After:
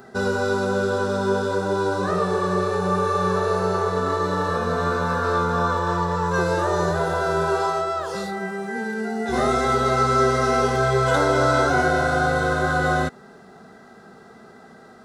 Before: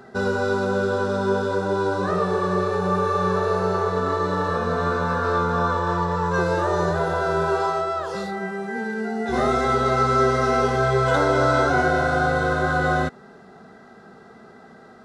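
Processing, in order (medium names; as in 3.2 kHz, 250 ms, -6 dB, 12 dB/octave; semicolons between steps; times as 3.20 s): treble shelf 7.4 kHz +11 dB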